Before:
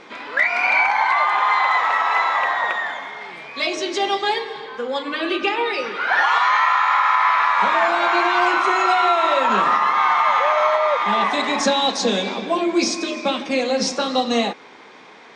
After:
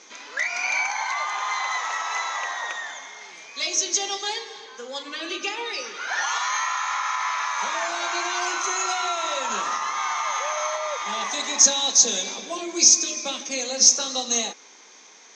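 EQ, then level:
high-pass filter 210 Hz 12 dB per octave
low-pass with resonance 6,300 Hz, resonance Q 14
high-shelf EQ 3,500 Hz +11.5 dB
−11.5 dB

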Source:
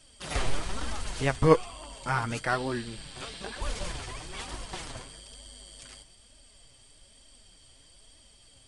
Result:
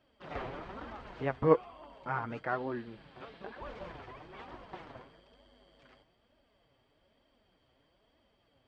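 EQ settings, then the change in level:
high-pass filter 340 Hz 6 dB per octave
head-to-tape spacing loss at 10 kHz 40 dB
high-shelf EQ 4,100 Hz −9 dB
0.0 dB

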